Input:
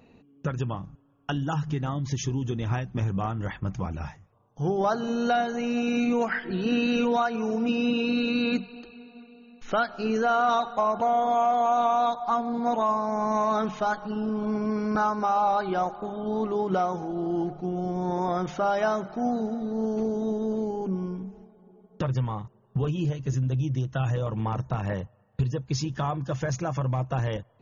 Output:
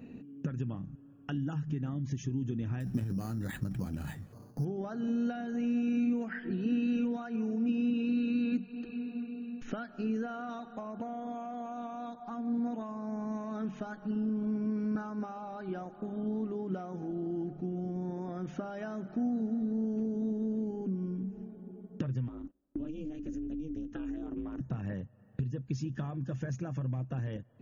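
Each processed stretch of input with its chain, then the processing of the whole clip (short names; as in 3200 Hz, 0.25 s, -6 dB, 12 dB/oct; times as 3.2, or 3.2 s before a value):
2.8–4.65 high shelf 2600 Hz +7.5 dB + transient shaper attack +7 dB, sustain +11 dB + careless resampling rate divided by 8×, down filtered, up hold
22.28–24.61 gate -52 dBFS, range -19 dB + ring modulator 160 Hz + compressor 2:1, threshold -37 dBFS
whole clip: bell 2100 Hz -10.5 dB 0.24 oct; compressor 3:1, threshold -44 dBFS; ten-band EQ 125 Hz +5 dB, 250 Hz +11 dB, 1000 Hz -8 dB, 2000 Hz +9 dB, 4000 Hz -7 dB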